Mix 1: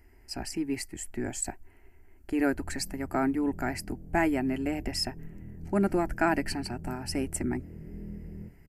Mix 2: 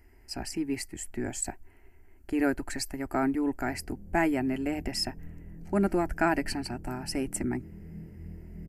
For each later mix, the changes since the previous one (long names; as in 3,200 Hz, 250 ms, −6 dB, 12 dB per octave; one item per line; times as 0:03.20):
background: entry +1.10 s
reverb: off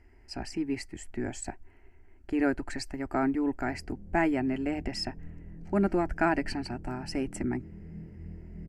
master: add high-frequency loss of the air 80 metres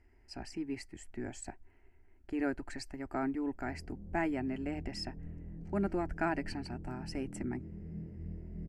speech −7.0 dB